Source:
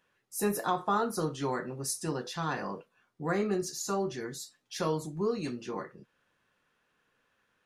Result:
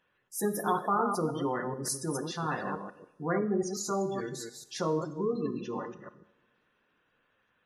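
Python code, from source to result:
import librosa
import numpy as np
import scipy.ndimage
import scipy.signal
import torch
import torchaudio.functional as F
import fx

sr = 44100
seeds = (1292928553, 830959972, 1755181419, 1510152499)

y = fx.reverse_delay(x, sr, ms=145, wet_db=-5.5)
y = fx.spec_gate(y, sr, threshold_db=-20, keep='strong')
y = fx.rev_double_slope(y, sr, seeds[0], early_s=0.79, late_s=3.4, knee_db=-26, drr_db=11.5)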